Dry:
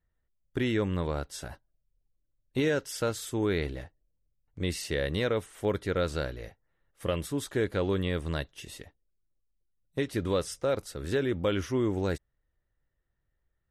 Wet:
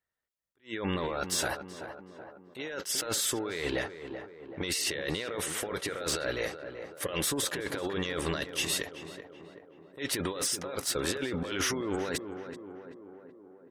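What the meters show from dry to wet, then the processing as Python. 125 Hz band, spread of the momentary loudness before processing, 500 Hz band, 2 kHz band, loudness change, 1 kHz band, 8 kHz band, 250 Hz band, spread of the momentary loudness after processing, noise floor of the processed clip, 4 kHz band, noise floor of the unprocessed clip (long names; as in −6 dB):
−8.0 dB, 12 LU, −4.5 dB, +2.0 dB, −1.5 dB, +1.0 dB, +11.0 dB, −4.0 dB, 17 LU, −58 dBFS, +6.0 dB, −79 dBFS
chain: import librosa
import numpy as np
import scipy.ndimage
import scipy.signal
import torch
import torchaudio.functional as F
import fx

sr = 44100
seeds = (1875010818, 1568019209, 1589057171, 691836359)

p1 = fx.highpass(x, sr, hz=800.0, slope=6)
p2 = fx.over_compress(p1, sr, threshold_db=-43.0, ratio=-1.0)
p3 = fx.leveller(p2, sr, passes=3)
p4 = fx.spec_gate(p3, sr, threshold_db=-30, keep='strong')
p5 = p4 + fx.echo_tape(p4, sr, ms=381, feedback_pct=70, wet_db=-6.5, lp_hz=1300.0, drive_db=24.0, wow_cents=27, dry=0)
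y = fx.attack_slew(p5, sr, db_per_s=290.0)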